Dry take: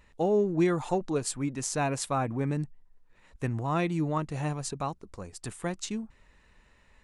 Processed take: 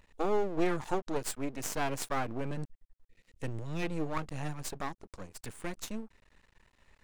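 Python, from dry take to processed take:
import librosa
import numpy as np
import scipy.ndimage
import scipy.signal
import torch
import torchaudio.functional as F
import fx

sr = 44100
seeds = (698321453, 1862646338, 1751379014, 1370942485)

y = fx.spec_box(x, sr, start_s=3.08, length_s=0.74, low_hz=540.0, high_hz=1800.0, gain_db=-18)
y = np.maximum(y, 0.0)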